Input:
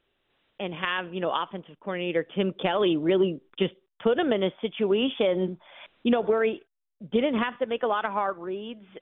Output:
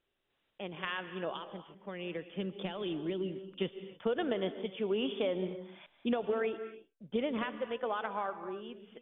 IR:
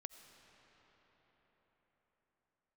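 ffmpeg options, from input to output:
-filter_complex "[0:a]asettb=1/sr,asplit=3[s0][s1][s2];[s0]atrim=end=1.304[s3];[s1]atrim=start=1.3:end=3.47,asetpts=PTS-STARTPTS,afade=t=in:d=0.004:c=qsin,afade=t=out:st=2.166:d=0.004:c=qsin,acrossover=split=290|3000[s4][s5][s6];[s5]acompressor=threshold=0.0282:ratio=6[s7];[s4][s7][s6]amix=inputs=3:normalize=0[s8];[s2]atrim=start=3.466[s9];[s3][s8]acrossfade=d=0.004:c1=hsin:c2=qsin[s10];[s10][s9]acrossfade=d=0.004:c1=qsin:c2=hsin[s11];[1:a]atrim=start_sample=2205,afade=t=out:st=0.24:d=0.01,atrim=end_sample=11025,asetrate=27342,aresample=44100[s12];[s11][s12]afir=irnorm=-1:irlink=0,volume=0.531"

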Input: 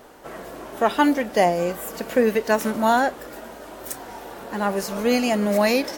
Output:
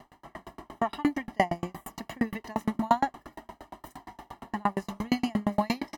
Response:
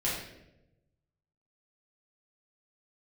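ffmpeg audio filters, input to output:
-af "highshelf=f=4600:g=-11,bandreject=f=1300:w=24,aecho=1:1:1:0.89,aeval=exprs='val(0)*pow(10,-37*if(lt(mod(8.6*n/s,1),2*abs(8.6)/1000),1-mod(8.6*n/s,1)/(2*abs(8.6)/1000),(mod(8.6*n/s,1)-2*abs(8.6)/1000)/(1-2*abs(8.6)/1000))/20)':c=same"

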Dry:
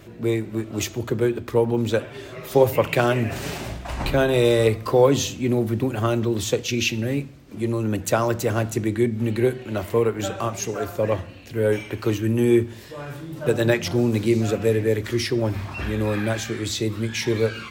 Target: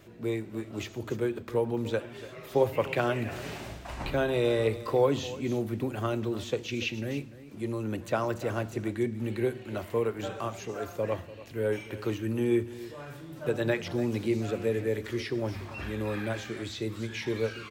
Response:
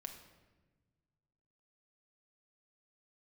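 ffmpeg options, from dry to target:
-filter_complex "[0:a]lowshelf=f=200:g=-3.5,asplit=2[s0][s1];[s1]aecho=0:1:291:0.15[s2];[s0][s2]amix=inputs=2:normalize=0,acrossover=split=4000[s3][s4];[s4]acompressor=threshold=0.00794:ratio=4:attack=1:release=60[s5];[s3][s5]amix=inputs=2:normalize=0,volume=0.422"

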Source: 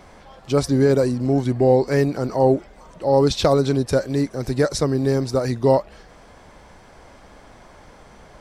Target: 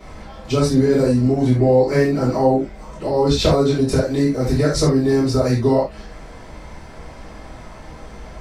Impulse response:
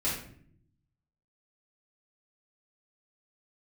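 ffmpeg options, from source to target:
-filter_complex "[0:a]acompressor=threshold=0.0708:ratio=2[s0];[1:a]atrim=start_sample=2205,atrim=end_sample=4410[s1];[s0][s1]afir=irnorm=-1:irlink=0"

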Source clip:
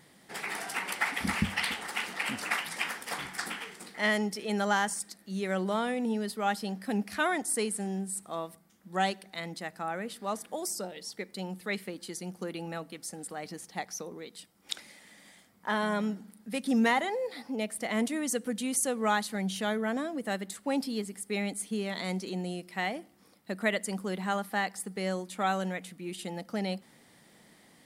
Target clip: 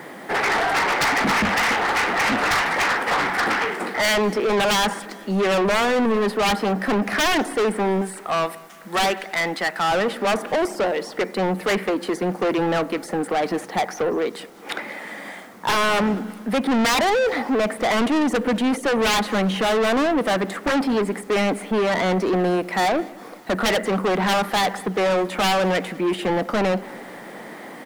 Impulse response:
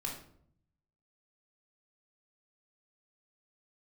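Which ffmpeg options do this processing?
-filter_complex "[0:a]asettb=1/sr,asplit=3[s0][s1][s2];[s0]atrim=end=8.014[s3];[s1]atrim=start=8.01:end=9.92,asetpts=PTS-STARTPTS,afade=t=in:d=0.004:c=qsin,afade=t=out:st=1.906:d=0.004:c=qsin,tiltshelf=f=1200:g=-8[s4];[s2]atrim=start=9.916[s5];[s3][s4]acrossfade=d=0.004:c1=hsin:c2=qsin[s6];[s6][s5]acrossfade=d=0.004:c1=qsin:c2=hsin,acrossover=split=250|2100[s7][s8][s9];[s8]aeval=exprs='0.158*sin(PI/2*5.01*val(0)/0.158)':c=same[s10];[s9]acompressor=threshold=0.00398:ratio=6[s11];[s7][s10][s11]amix=inputs=3:normalize=0,acrusher=bits=9:mix=0:aa=0.000001,asoftclip=type=tanh:threshold=0.0531,asplit=2[s12][s13];[s13]aecho=0:1:200|400|600|800:0.0708|0.0404|0.023|0.0131[s14];[s12][s14]amix=inputs=2:normalize=0,volume=2.51"

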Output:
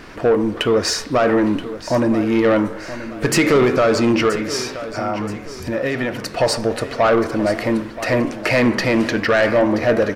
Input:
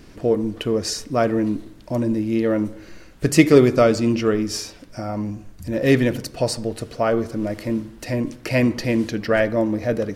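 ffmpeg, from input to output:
-filter_complex "[0:a]equalizer=f=1300:w=0.4:g=14.5,alimiter=limit=0.708:level=0:latency=1:release=66,asettb=1/sr,asplit=3[s0][s1][s2];[s0]atrim=end=4.294[s3];[s1]atrim=start=4.29:end=6.31,asetpts=PTS-STARTPTS,afade=t=in:d=0.004:c=qsin,afade=t=out:st=2.016:d=0.004:c=qsin,acompressor=threshold=0.0794:ratio=3[s4];[s2]atrim=start=6.306[s5];[s3][s4]acrossfade=d=0.004:c1=hsin:c2=qsin[s6];[s6][s5]acrossfade=d=0.004:c1=qsin:c2=hsin,flanger=delay=9.9:depth=6.3:regen=89:speed=1.3:shape=triangular,asoftclip=type=tanh:threshold=0.178,aecho=1:1:977|1954|2931|3908:0.2|0.0798|0.0319|0.0128,volume=2"

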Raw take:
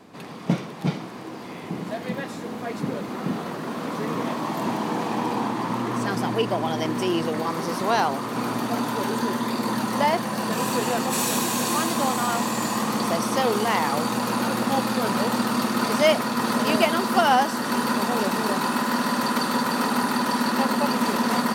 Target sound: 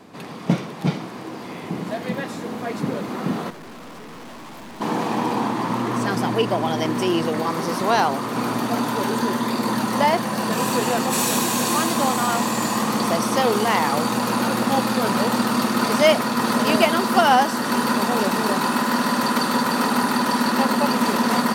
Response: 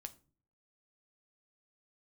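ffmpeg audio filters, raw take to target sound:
-filter_complex "[0:a]asplit=3[s0][s1][s2];[s0]afade=t=out:st=3.49:d=0.02[s3];[s1]aeval=exprs='(tanh(112*val(0)+0.6)-tanh(0.6))/112':c=same,afade=t=in:st=3.49:d=0.02,afade=t=out:st=4.8:d=0.02[s4];[s2]afade=t=in:st=4.8:d=0.02[s5];[s3][s4][s5]amix=inputs=3:normalize=0,volume=1.41"

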